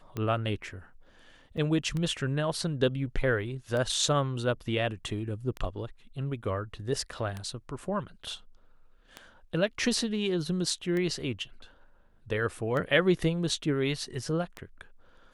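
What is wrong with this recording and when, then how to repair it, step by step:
scratch tick 33 1/3 rpm −21 dBFS
0:01.57–0:01.58: drop-out 5.8 ms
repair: click removal
repair the gap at 0:01.57, 5.8 ms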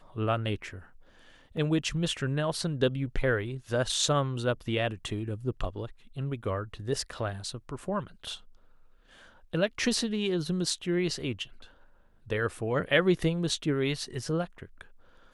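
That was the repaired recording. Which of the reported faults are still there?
none of them is left

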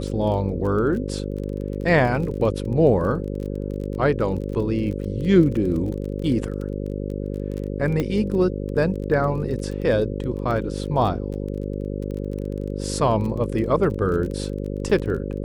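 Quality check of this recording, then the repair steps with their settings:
mains buzz 50 Hz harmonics 11 −28 dBFS
surface crackle 23 per second −30 dBFS
0:08.00: click −12 dBFS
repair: click removal
hum removal 50 Hz, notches 11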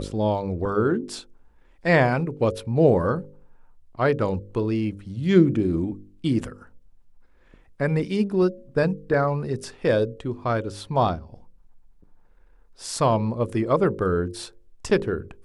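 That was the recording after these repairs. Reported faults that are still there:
none of them is left

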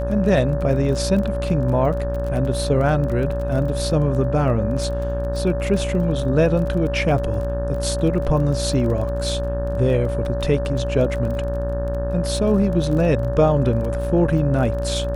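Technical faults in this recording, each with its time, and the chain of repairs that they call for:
mains buzz 60 Hz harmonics 30 −25 dBFS
surface crackle 23 per second −28 dBFS
whistle 570 Hz −25 dBFS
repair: click removal
notch filter 570 Hz, Q 30
hum removal 60 Hz, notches 30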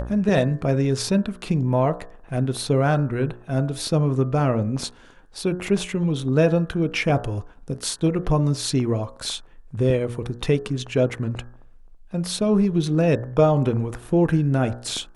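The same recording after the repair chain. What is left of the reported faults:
none of them is left

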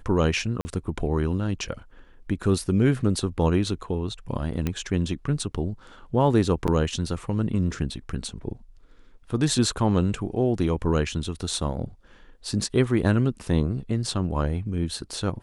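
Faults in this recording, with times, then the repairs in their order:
0:00.61–0:00.65: drop-out 40 ms
0:04.67: click −13 dBFS
0:06.67–0:06.68: drop-out 8.4 ms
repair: click removal
repair the gap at 0:00.61, 40 ms
repair the gap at 0:06.67, 8.4 ms

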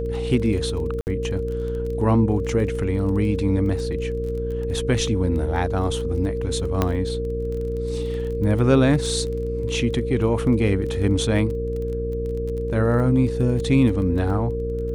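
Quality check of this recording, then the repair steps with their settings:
mains buzz 60 Hz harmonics 9 −28 dBFS
surface crackle 20 per second −30 dBFS
whistle 460 Hz −26 dBFS
0:01.01–0:01.07: drop-out 59 ms
0:06.82: click −7 dBFS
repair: click removal
hum removal 60 Hz, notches 9
notch filter 460 Hz, Q 30
repair the gap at 0:01.01, 59 ms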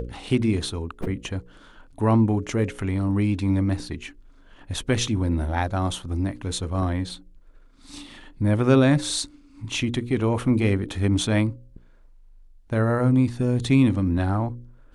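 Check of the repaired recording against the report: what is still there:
none of them is left

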